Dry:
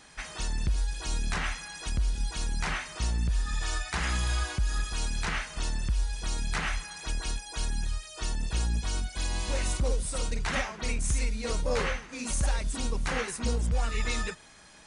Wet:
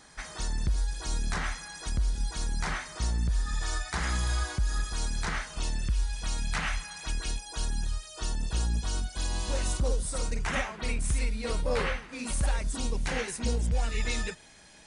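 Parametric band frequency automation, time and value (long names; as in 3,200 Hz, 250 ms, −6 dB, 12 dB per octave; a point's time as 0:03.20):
parametric band −7.5 dB 0.46 octaves
0:05.43 2,700 Hz
0:06.20 380 Hz
0:07.04 380 Hz
0:07.46 2,200 Hz
0:09.96 2,200 Hz
0:10.84 6,400 Hz
0:12.47 6,400 Hz
0:12.94 1,200 Hz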